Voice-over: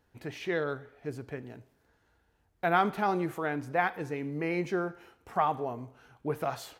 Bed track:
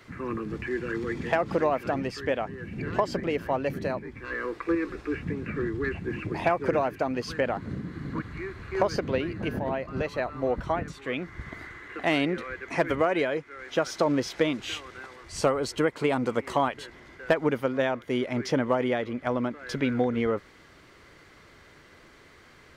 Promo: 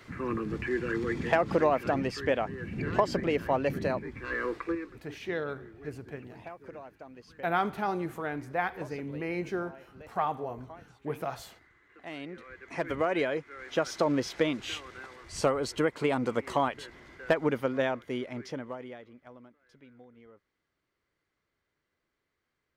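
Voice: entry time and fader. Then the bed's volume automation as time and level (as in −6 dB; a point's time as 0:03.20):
4.80 s, −2.5 dB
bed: 0:04.55 0 dB
0:05.11 −20 dB
0:11.88 −20 dB
0:13.17 −2.5 dB
0:17.88 −2.5 dB
0:19.72 −29 dB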